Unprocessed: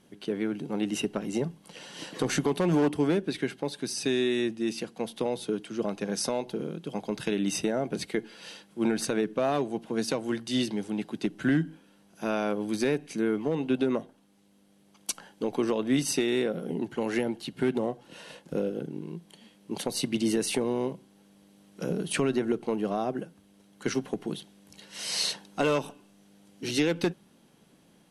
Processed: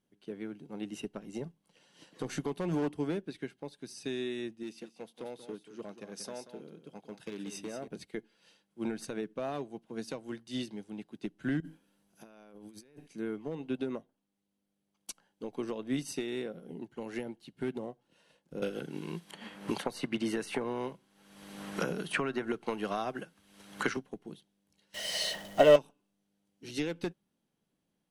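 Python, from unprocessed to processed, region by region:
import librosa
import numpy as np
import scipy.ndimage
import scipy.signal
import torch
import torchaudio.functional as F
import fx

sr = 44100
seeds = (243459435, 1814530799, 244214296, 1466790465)

y = fx.chain(x, sr, fx.clip_hard(threshold_db=-21.5),
    fx.highpass(hz=190.0, slope=6),
    fx.echo_single(ms=184, db=-8.5), at=(4.63, 7.88))
y = fx.chain(y, sr, fx.high_shelf(hz=9900.0, db=10.0),
    fx.over_compress(threshold_db=-38.0, ratio=-1.0), at=(11.6, 13.08))
y = fx.chain(y, sr, fx.peak_eq(hz=1400.0, db=11.5, octaves=2.0),
    fx.band_squash(depth_pct=100), at=(18.62, 23.97))
y = fx.chain(y, sr, fx.zero_step(step_db=-31.5),
    fx.small_body(hz=(620.0, 1900.0, 3000.0), ring_ms=30, db=16), at=(24.94, 25.76))
y = fx.low_shelf(y, sr, hz=65.0, db=8.5)
y = fx.upward_expand(y, sr, threshold_db=-48.0, expansion=1.5)
y = y * 10.0 ** (-3.5 / 20.0)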